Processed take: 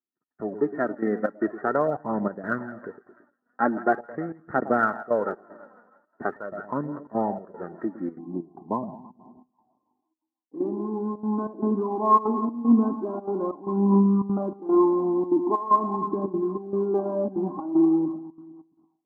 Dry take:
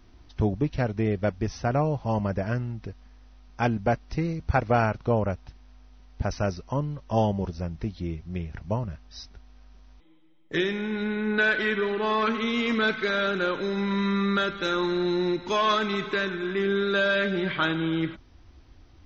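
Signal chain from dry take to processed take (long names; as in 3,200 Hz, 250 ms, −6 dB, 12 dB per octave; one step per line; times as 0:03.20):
parametric band 510 Hz −11 dB 0.52 octaves
noise gate −47 dBFS, range −34 dB
echo with a time of its own for lows and highs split 830 Hz, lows 111 ms, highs 163 ms, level −14 dB
automatic gain control gain up to 16 dB
high-pass filter 220 Hz 24 dB per octave
gate pattern "xxx..xxxxxxx." 191 BPM −12 dB
Chebyshev low-pass with heavy ripple 1,900 Hz, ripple 9 dB, from 0:08.17 1,100 Hz
phase shifter 0.43 Hz, delay 4.2 ms, feedback 50%
level −2 dB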